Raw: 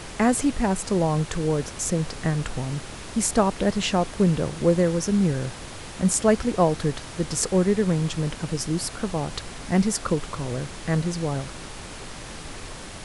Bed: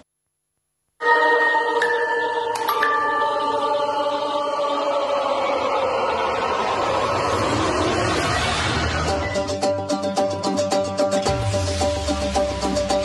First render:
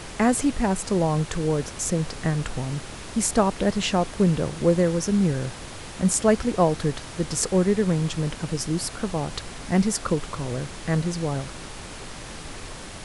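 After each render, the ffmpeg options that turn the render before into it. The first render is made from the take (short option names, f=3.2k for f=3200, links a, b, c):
-af anull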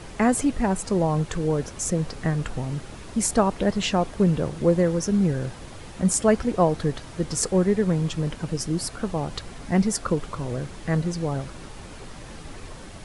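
-af "afftdn=nr=7:nf=-38"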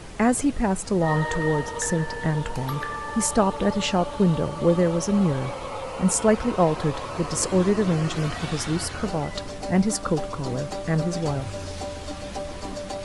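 -filter_complex "[1:a]volume=-12.5dB[a];[0:a][a]amix=inputs=2:normalize=0"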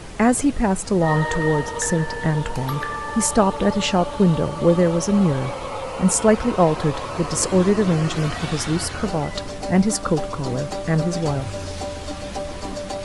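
-af "volume=3.5dB"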